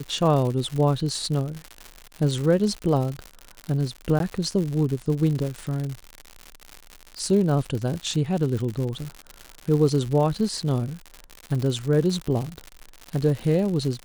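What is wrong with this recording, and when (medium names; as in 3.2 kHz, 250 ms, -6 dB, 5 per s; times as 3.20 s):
crackle 140 per s -28 dBFS
4.19–4.20 s: dropout 12 ms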